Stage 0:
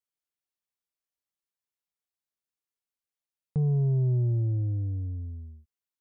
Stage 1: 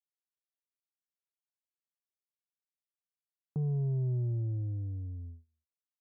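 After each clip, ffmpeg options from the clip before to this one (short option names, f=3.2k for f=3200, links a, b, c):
-af "agate=range=-29dB:threshold=-38dB:ratio=16:detection=peak,volume=-6.5dB"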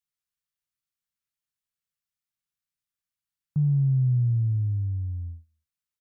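-af "firequalizer=gain_entry='entry(160,0);entry(390,-25);entry(1200,-5)':delay=0.05:min_phase=1,volume=9dB"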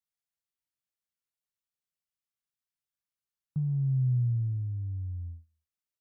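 -filter_complex "[0:a]asplit=2[a][b];[b]adelay=24,volume=-14dB[c];[a][c]amix=inputs=2:normalize=0,volume=-5.5dB"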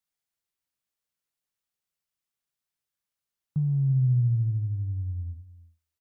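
-filter_complex "[0:a]asplit=2[a][b];[b]adelay=332.4,volume=-17dB,highshelf=f=4k:g=-7.48[c];[a][c]amix=inputs=2:normalize=0,volume=4dB"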